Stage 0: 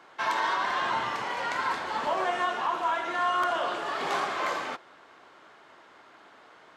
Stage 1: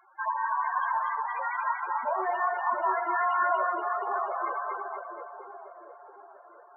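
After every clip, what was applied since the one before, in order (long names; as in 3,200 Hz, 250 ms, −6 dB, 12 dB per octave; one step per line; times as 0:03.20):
high-shelf EQ 5,300 Hz +9 dB
spectral peaks only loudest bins 8
echo with a time of its own for lows and highs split 760 Hz, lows 689 ms, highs 239 ms, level −3 dB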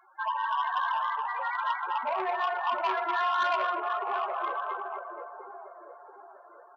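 double-tracking delay 16 ms −13.5 dB
on a send at −23.5 dB: convolution reverb RT60 0.60 s, pre-delay 3 ms
on the sum: saturating transformer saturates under 1,600 Hz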